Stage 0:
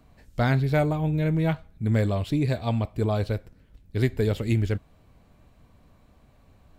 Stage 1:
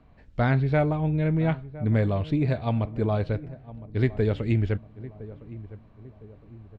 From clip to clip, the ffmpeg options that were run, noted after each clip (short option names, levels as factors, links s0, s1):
-filter_complex "[0:a]lowpass=2900,asplit=2[s0][s1];[s1]adelay=1011,lowpass=f=910:p=1,volume=0.158,asplit=2[s2][s3];[s3]adelay=1011,lowpass=f=910:p=1,volume=0.47,asplit=2[s4][s5];[s5]adelay=1011,lowpass=f=910:p=1,volume=0.47,asplit=2[s6][s7];[s7]adelay=1011,lowpass=f=910:p=1,volume=0.47[s8];[s0][s2][s4][s6][s8]amix=inputs=5:normalize=0"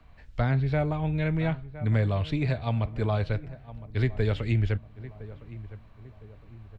-filter_complex "[0:a]equalizer=f=280:w=0.39:g=-12,acrossover=split=180|610[s0][s1][s2];[s2]alimiter=level_in=2.11:limit=0.0631:level=0:latency=1:release=327,volume=0.473[s3];[s0][s1][s3]amix=inputs=3:normalize=0,volume=2.11"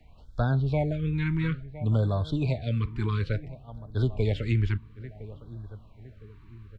-af "afftfilt=real='re*(1-between(b*sr/1024,600*pow(2400/600,0.5+0.5*sin(2*PI*0.58*pts/sr))/1.41,600*pow(2400/600,0.5+0.5*sin(2*PI*0.58*pts/sr))*1.41))':imag='im*(1-between(b*sr/1024,600*pow(2400/600,0.5+0.5*sin(2*PI*0.58*pts/sr))/1.41,600*pow(2400/600,0.5+0.5*sin(2*PI*0.58*pts/sr))*1.41))':win_size=1024:overlap=0.75"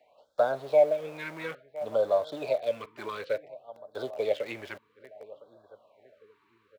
-filter_complex "[0:a]asplit=2[s0][s1];[s1]aeval=exprs='val(0)*gte(abs(val(0)),0.0282)':c=same,volume=0.355[s2];[s0][s2]amix=inputs=2:normalize=0,highpass=f=570:t=q:w=4.9,volume=0.596"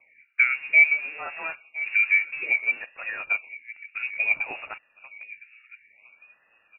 -af "lowpass=f=2500:t=q:w=0.5098,lowpass=f=2500:t=q:w=0.6013,lowpass=f=2500:t=q:w=0.9,lowpass=f=2500:t=q:w=2.563,afreqshift=-2900,volume=1.58"